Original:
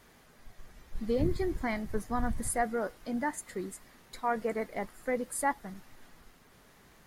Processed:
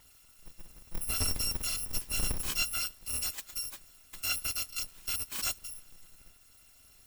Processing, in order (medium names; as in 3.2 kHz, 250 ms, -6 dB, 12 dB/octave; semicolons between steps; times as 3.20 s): bit-reversed sample order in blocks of 256 samples; slew-rate limiter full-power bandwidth 310 Hz